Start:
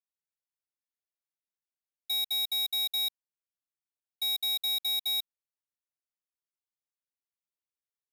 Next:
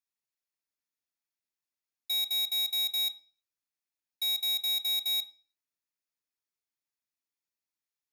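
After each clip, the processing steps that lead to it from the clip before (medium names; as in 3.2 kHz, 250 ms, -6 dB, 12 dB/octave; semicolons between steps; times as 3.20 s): reverberation RT60 0.40 s, pre-delay 3 ms, DRR 8.5 dB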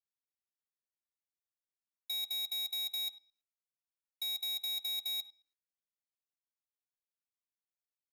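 level held to a coarse grid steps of 18 dB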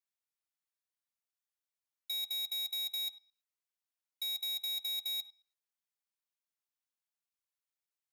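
high-pass 690 Hz 12 dB/octave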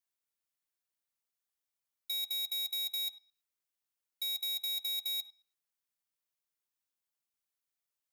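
treble shelf 8.9 kHz +4.5 dB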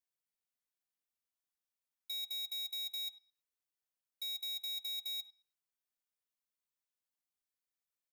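comb 4 ms, depth 35%; trim -6 dB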